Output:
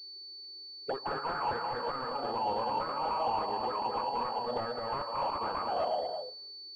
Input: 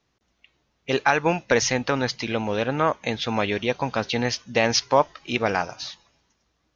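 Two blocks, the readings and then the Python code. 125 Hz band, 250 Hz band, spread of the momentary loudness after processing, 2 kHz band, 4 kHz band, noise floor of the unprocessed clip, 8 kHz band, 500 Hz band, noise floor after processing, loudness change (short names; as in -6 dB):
-19.0 dB, -17.5 dB, 11 LU, -17.5 dB, -10.0 dB, -72 dBFS, n/a, -11.0 dB, -47 dBFS, -10.5 dB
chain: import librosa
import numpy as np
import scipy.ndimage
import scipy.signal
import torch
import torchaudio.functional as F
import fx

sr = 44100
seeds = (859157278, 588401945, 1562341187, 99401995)

p1 = fx.rev_gated(x, sr, seeds[0], gate_ms=400, shape='rising', drr_db=6.5)
p2 = fx.auto_wah(p1, sr, base_hz=380.0, top_hz=1300.0, q=9.7, full_db=-17.5, direction='up')
p3 = fx.fold_sine(p2, sr, drive_db=18, ceiling_db=-17.5)
p4 = p2 + (p3 * 10.0 ** (-4.0 / 20.0))
p5 = fx.env_lowpass_down(p4, sr, base_hz=980.0, full_db=-26.5)
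p6 = p5 + fx.echo_single(p5, sr, ms=219, db=-4.5, dry=0)
p7 = fx.pwm(p6, sr, carrier_hz=4500.0)
y = p7 * 10.0 ** (-6.0 / 20.0)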